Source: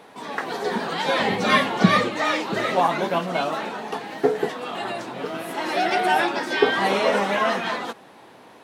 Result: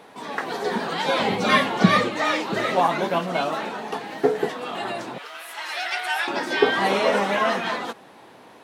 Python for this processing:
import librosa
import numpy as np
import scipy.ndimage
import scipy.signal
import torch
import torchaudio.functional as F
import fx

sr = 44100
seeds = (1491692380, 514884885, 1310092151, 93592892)

y = fx.notch(x, sr, hz=1800.0, q=8.6, at=(1.06, 1.49))
y = fx.highpass(y, sr, hz=1300.0, slope=12, at=(5.18, 6.28))